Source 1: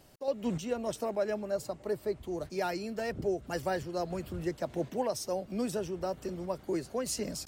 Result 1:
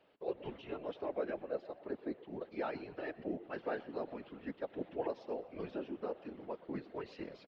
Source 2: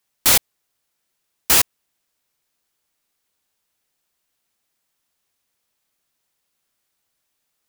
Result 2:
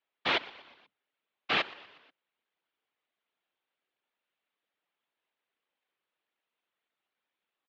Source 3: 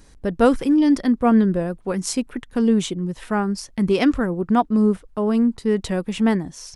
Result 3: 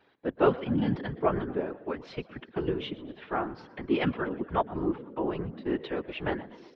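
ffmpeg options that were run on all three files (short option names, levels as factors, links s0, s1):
-filter_complex "[0:a]asplit=5[s0][s1][s2][s3][s4];[s1]adelay=121,afreqshift=68,volume=0.112[s5];[s2]adelay=242,afreqshift=136,volume=0.0603[s6];[s3]adelay=363,afreqshift=204,volume=0.0327[s7];[s4]adelay=484,afreqshift=272,volume=0.0176[s8];[s0][s5][s6][s7][s8]amix=inputs=5:normalize=0,highpass=f=340:t=q:w=0.5412,highpass=f=340:t=q:w=1.307,lowpass=f=3600:t=q:w=0.5176,lowpass=f=3600:t=q:w=0.7071,lowpass=f=3600:t=q:w=1.932,afreqshift=-81,afftfilt=real='hypot(re,im)*cos(2*PI*random(0))':imag='hypot(re,im)*sin(2*PI*random(1))':win_size=512:overlap=0.75"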